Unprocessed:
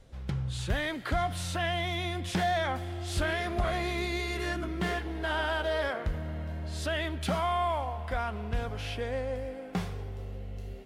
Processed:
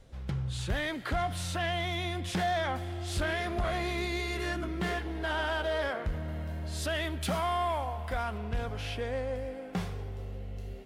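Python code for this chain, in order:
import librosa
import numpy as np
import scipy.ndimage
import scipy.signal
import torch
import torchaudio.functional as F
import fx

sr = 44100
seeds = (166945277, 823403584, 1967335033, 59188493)

y = fx.high_shelf(x, sr, hz=8100.0, db=8.5, at=(6.28, 8.38))
y = 10.0 ** (-22.0 / 20.0) * np.tanh(y / 10.0 ** (-22.0 / 20.0))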